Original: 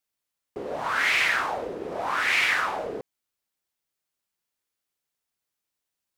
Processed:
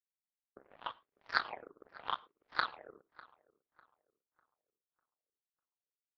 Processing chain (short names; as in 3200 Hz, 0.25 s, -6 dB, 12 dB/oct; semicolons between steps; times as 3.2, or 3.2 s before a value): reverb removal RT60 0.54 s; reverse; upward compressor, threshold -35 dBFS; reverse; LFO low-pass sine 1.6 Hz 390–1600 Hz; power-law curve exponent 3; darkening echo 0.599 s, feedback 37%, low-pass 1800 Hz, level -20 dB; on a send at -21.5 dB: reverb, pre-delay 3 ms